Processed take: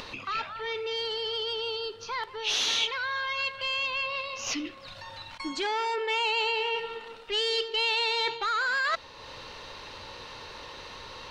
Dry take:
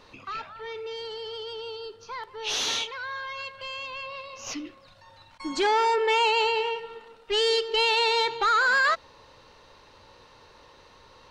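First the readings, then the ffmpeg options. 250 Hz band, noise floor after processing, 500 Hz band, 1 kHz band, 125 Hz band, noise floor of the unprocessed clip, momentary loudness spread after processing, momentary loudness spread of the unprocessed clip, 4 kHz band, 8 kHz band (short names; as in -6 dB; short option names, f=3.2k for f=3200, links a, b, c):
-2.0 dB, -47 dBFS, -5.0 dB, -5.0 dB, n/a, -54 dBFS, 17 LU, 16 LU, 0.0 dB, -1.0 dB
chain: -af "areverse,acompressor=threshold=-32dB:ratio=6,areverse,equalizer=f=3.1k:t=o:w=1.8:g=6,acompressor=mode=upward:threshold=-38dB:ratio=2.5,volume=2.5dB"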